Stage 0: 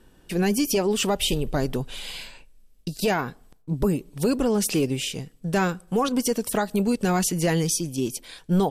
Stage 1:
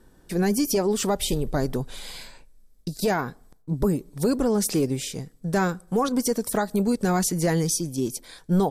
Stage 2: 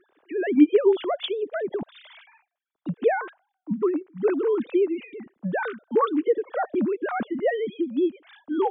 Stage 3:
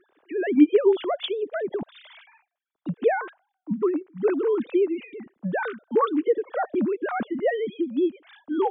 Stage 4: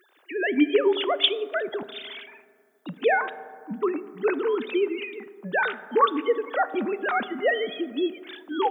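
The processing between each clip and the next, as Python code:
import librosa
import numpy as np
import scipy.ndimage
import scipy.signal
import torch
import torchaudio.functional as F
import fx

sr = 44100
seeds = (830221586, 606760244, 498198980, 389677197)

y1 = fx.peak_eq(x, sr, hz=2800.0, db=-12.0, octaves=0.44)
y2 = fx.sine_speech(y1, sr)
y3 = y2
y4 = fx.tilt_eq(y3, sr, slope=4.5)
y4 = fx.rev_fdn(y4, sr, rt60_s=2.1, lf_ratio=1.0, hf_ratio=0.3, size_ms=23.0, drr_db=13.5)
y4 = y4 * librosa.db_to_amplitude(3.5)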